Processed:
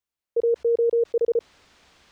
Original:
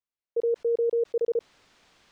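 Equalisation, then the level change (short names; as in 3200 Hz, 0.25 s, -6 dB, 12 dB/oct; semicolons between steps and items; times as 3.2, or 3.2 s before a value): bell 68 Hz +14 dB 0.25 oct; +4.0 dB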